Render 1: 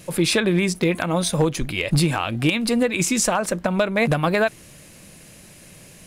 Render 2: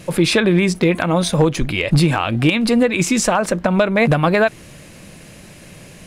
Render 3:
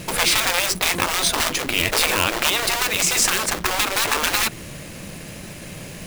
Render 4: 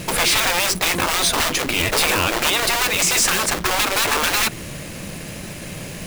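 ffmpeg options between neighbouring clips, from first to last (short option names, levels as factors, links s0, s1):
-filter_complex "[0:a]highshelf=f=6100:g=-10,asplit=2[s0][s1];[s1]alimiter=limit=0.126:level=0:latency=1:release=111,volume=0.708[s2];[s0][s2]amix=inputs=2:normalize=0,volume=1.33"
-af "acrusher=bits=2:mode=log:mix=0:aa=0.000001,afftfilt=real='re*lt(hypot(re,im),0.316)':imag='im*lt(hypot(re,im),0.316)':win_size=1024:overlap=0.75,volume=1.58"
-af "asoftclip=type=hard:threshold=0.15,volume=1.5"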